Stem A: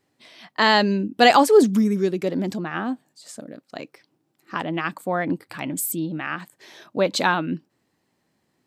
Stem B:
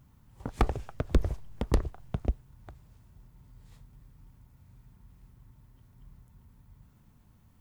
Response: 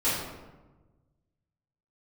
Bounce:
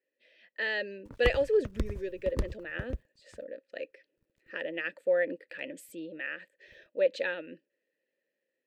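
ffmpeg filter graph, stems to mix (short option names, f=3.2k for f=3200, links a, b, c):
-filter_complex "[0:a]equalizer=f=86:t=o:w=2:g=-11,dynaudnorm=f=430:g=5:m=11.5dB,asplit=3[a][b][c];[a]bandpass=f=530:t=q:w=8,volume=0dB[d];[b]bandpass=f=1.84k:t=q:w=8,volume=-6dB[e];[c]bandpass=f=2.48k:t=q:w=8,volume=-9dB[f];[d][e][f]amix=inputs=3:normalize=0,volume=-1.5dB[g];[1:a]agate=range=-33dB:threshold=-48dB:ratio=3:detection=peak,aeval=exprs='sgn(val(0))*max(abs(val(0))-0.00282,0)':c=same,tremolo=f=9.7:d=0.58,adelay=650,volume=-4.5dB[h];[g][h]amix=inputs=2:normalize=0,equalizer=f=750:w=5.2:g=-13"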